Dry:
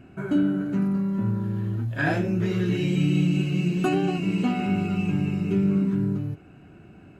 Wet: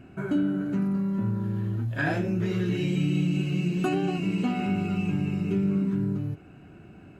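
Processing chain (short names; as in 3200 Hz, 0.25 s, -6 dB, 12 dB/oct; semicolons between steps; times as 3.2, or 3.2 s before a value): compressor 1.5:1, threshold -27 dBFS, peak gain reduction 3.5 dB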